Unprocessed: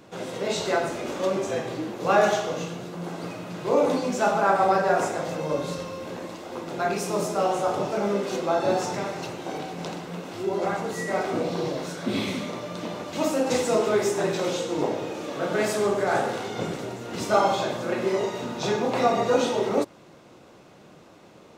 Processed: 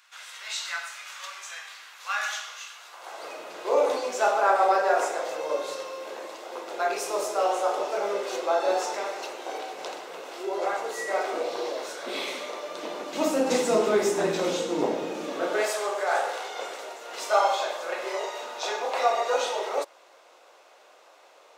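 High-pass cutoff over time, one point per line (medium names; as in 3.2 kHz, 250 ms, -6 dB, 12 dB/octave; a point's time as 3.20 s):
high-pass 24 dB/octave
2.69 s 1.3 kHz
3.37 s 420 Hz
12.60 s 420 Hz
13.53 s 180 Hz
15.25 s 180 Hz
15.76 s 540 Hz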